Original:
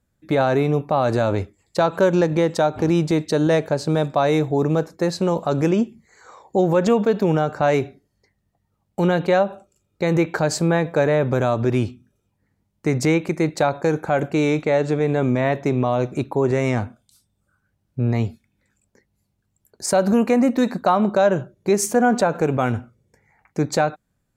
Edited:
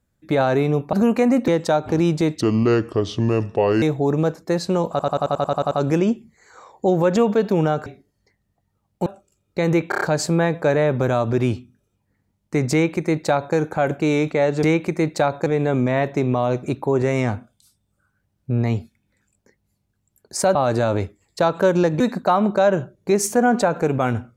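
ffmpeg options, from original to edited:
-filter_complex "[0:a]asplit=24[a][b][c][d][e][f][g][h][i][j][k][l][m][n][o][p][q][r][s][t][u][v][w][x];[a]atrim=end=0.932[y];[b]atrim=start=20.038:end=20.592[z];[c]atrim=start=2.378:end=3.314[aa];[d]atrim=start=3.31:end=4.34,asetpts=PTS-STARTPTS,asetrate=32193,aresample=44100,atrim=end_sample=62223,asetpts=PTS-STARTPTS[ab];[e]atrim=start=4.336:end=5.512[ac];[f]atrim=start=5.418:end=5.512[ad];[g]atrim=start=5.418:end=5.512[ae];[h]atrim=start=5.418:end=5.512[af];[i]atrim=start=5.418:end=5.512[ag];[j]atrim=start=5.418:end=5.512[ah];[k]atrim=start=5.418:end=5.512[ai];[l]atrim=start=5.418:end=5.512[aj];[m]atrim=start=5.418:end=5.512[ak];[n]atrim=start=5.418:end=7.572[al];[o]atrim=start=7.828:end=9.032[am];[p]atrim=start=9.498:end=10.362[an];[q]atrim=start=10.328:end=10.362[ao];[r]atrim=start=10.328:end=10.362[ap];[s]atrim=start=10.328:end=10.362[aq];[t]atrim=start=10.328:end=14.952[ar];[u]atrim=start=13.038:end=13.872[as];[v]atrim=start=14.948:end=20.042[at];[w]atrim=start=0.928:end=2.382[au];[x]atrim=start=20.588[av];[y][z]acrossfade=d=0.004:c1=hsin:c2=hsin[aw];[aw][aa]acrossfade=d=0.004:c1=hsin:c2=hsin[ax];[ax][ab]acrossfade=d=0.004:c1=hsin:c2=hsin[ay];[ay][ac]acrossfade=d=0.004:c1=hsin:c2=hsin[az];[az][ad]acrossfade=d=0.004:c1=hsin:c2=hsin[ba];[ba][ae]acrossfade=d=0.004:c1=hsin:c2=hsin[bb];[bb][af]acrossfade=d=0.004:c1=hsin:c2=hsin[bc];[bc][ag]acrossfade=d=0.004:c1=hsin:c2=hsin[bd];[bd][ah]acrossfade=d=0.004:c1=hsin:c2=hsin[be];[be][ai]acrossfade=d=0.004:c1=hsin:c2=hsin[bf];[bf][aj]acrossfade=d=0.004:c1=hsin:c2=hsin[bg];[bg][ak]acrossfade=d=0.004:c1=hsin:c2=hsin[bh];[bh][al]acrossfade=d=0.004:c1=hsin:c2=hsin[bi];[bi][am]acrossfade=d=0.004:c1=hsin:c2=hsin[bj];[bj][an]acrossfade=d=0.004:c1=hsin:c2=hsin[bk];[bk][ao]acrossfade=d=0.004:c1=hsin:c2=hsin[bl];[bl][ap]acrossfade=d=0.004:c1=hsin:c2=hsin[bm];[bm][aq]acrossfade=d=0.004:c1=hsin:c2=hsin[bn];[bn][ar]acrossfade=d=0.004:c1=hsin:c2=hsin[bo];[bo][as]acrossfade=d=0.004:c1=hsin:c2=hsin[bp];[bp][at]acrossfade=d=0.004:c1=hsin:c2=hsin[bq];[bq][au]acrossfade=d=0.004:c1=hsin:c2=hsin[br];[br][av]acrossfade=d=0.004:c1=hsin:c2=hsin"

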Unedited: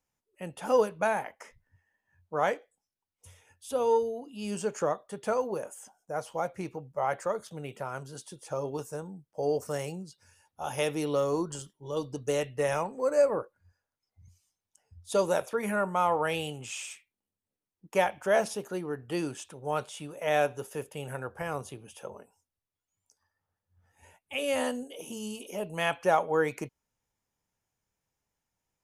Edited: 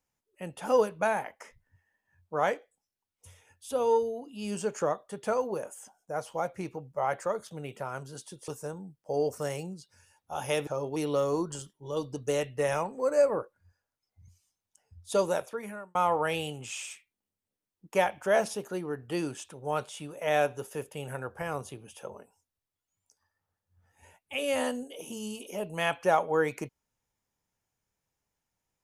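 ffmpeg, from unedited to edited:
-filter_complex "[0:a]asplit=5[a][b][c][d][e];[a]atrim=end=8.482[f];[b]atrim=start=8.768:end=10.962[g];[c]atrim=start=8.478:end=8.772[h];[d]atrim=start=10.958:end=15.95,asetpts=PTS-STARTPTS,afade=t=out:st=4.232:d=0.76[i];[e]atrim=start=15.95,asetpts=PTS-STARTPTS,afade=t=in:d=0.004:c=hsin[j];[f][g]acrossfade=d=0.004:c1=hsin:c2=hsin[k];[k][h]acrossfade=d=0.004:c1=hsin:c2=hsin[l];[i][j]concat=n=2:v=0:a=1[m];[l][m]acrossfade=d=0.004:c1=hsin:c2=hsin"

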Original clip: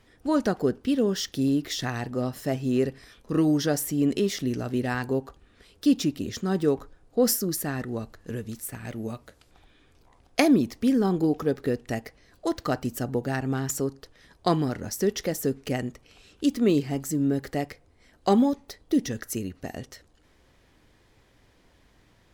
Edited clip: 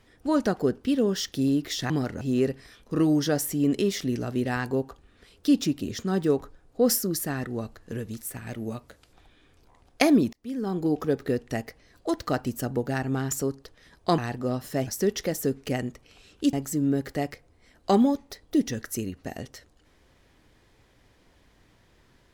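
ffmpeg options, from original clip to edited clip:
-filter_complex "[0:a]asplit=7[a][b][c][d][e][f][g];[a]atrim=end=1.902[h];[b]atrim=start=14.558:end=14.872[i];[c]atrim=start=2.588:end=10.71,asetpts=PTS-STARTPTS,afade=t=out:st=8.118:d=0.004:c=hsin[j];[d]atrim=start=10.71:end=14.562,asetpts=PTS-STARTPTS,afade=t=in:d=0.67[k];[e]atrim=start=1.898:end=2.592[l];[f]atrim=start=14.868:end=16.532[m];[g]atrim=start=16.908[n];[h][i]acrossfade=d=0.004:c1=hsin:c2=hsin[o];[j][k]concat=n=2:v=0:a=1[p];[o][p]acrossfade=d=0.004:c1=hsin:c2=hsin[q];[q][l]acrossfade=d=0.004:c1=hsin:c2=hsin[r];[r][m]acrossfade=d=0.004:c1=hsin:c2=hsin[s];[s][n]acrossfade=d=0.004:c1=hsin:c2=hsin"

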